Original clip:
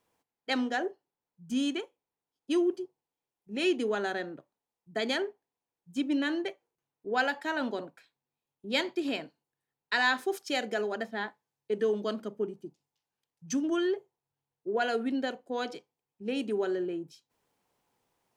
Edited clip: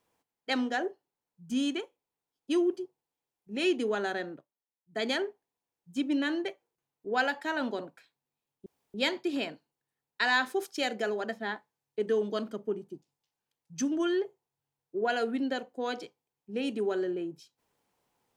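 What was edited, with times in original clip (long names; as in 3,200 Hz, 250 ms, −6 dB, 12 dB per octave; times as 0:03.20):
0:04.33–0:05.01: duck −13.5 dB, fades 0.13 s
0:08.66: splice in room tone 0.28 s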